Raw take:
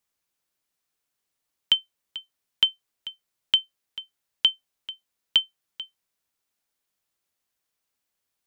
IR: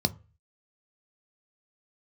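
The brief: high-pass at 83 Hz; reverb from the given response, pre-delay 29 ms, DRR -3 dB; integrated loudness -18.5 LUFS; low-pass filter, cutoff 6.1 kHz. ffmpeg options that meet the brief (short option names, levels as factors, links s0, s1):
-filter_complex "[0:a]highpass=83,lowpass=6100,asplit=2[s0][s1];[1:a]atrim=start_sample=2205,adelay=29[s2];[s1][s2]afir=irnorm=-1:irlink=0,volume=0.562[s3];[s0][s3]amix=inputs=2:normalize=0,volume=1.88"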